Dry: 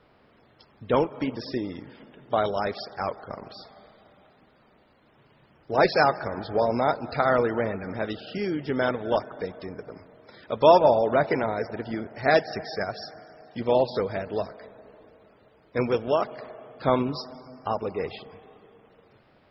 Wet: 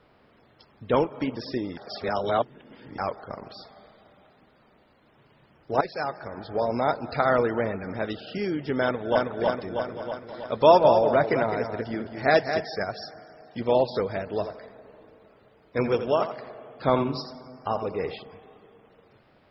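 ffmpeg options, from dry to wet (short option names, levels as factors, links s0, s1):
-filter_complex "[0:a]asplit=2[s0][s1];[s1]afade=t=in:st=8.83:d=0.01,afade=t=out:st=9.28:d=0.01,aecho=0:1:320|640|960|1280|1600|1920|2240|2560|2880:0.841395|0.504837|0.302902|0.181741|0.109045|0.0654269|0.0392561|0.0235537|0.0141322[s2];[s0][s2]amix=inputs=2:normalize=0,asplit=3[s3][s4][s5];[s3]afade=t=out:st=9.86:d=0.02[s6];[s4]aecho=1:1:210:0.398,afade=t=in:st=9.86:d=0.02,afade=t=out:st=12.64:d=0.02[s7];[s5]afade=t=in:st=12.64:d=0.02[s8];[s6][s7][s8]amix=inputs=3:normalize=0,asettb=1/sr,asplit=3[s9][s10][s11];[s9]atrim=end=14.304[s12];[s10]atrim=start=14.3:end=18.14,asetpts=PTS-STARTPTS,afade=t=in:d=0.004:c=qsin,afade=t=out:st=3.836:d=0.004:c=qsin,aecho=1:1:85|170:0.316|0.0474,atrim=end_sample=169344[s13];[s11]atrim=start=18.136[s14];[s12][s13]acrossfade=d=0.004:c1=hsin:c2=qsin[s15];[s15][s14]acrossfade=d=0.004:c1=qsin:c2=hsin,asplit=4[s16][s17][s18][s19];[s16]atrim=end=1.772[s20];[s17]atrim=start=1.768:end=2.982,asetpts=PTS-STARTPTS,areverse[s21];[s18]atrim=start=2.978:end=5.81,asetpts=PTS-STARTPTS,afade=t=out:st=2.828:d=0.004:c=hsin:silence=0.16788[s22];[s19]atrim=start=5.81,asetpts=PTS-STARTPTS,afade=t=in:d=1.19:silence=0.16788[s23];[s20][s21]acrossfade=d=0.004:c1=hsin:c2=hsin[s24];[s22][s23]concat=n=2:v=0:a=1[s25];[s24][s25]acrossfade=d=0.004:c1=hsin:c2=hsin"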